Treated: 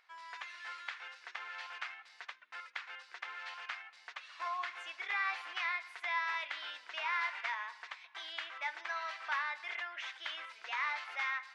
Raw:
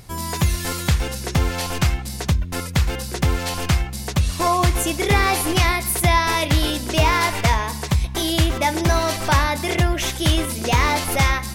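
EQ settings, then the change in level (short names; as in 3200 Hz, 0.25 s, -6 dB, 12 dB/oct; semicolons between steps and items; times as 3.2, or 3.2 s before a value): ladder high-pass 1200 Hz, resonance 25%; tape spacing loss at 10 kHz 43 dB; 0.0 dB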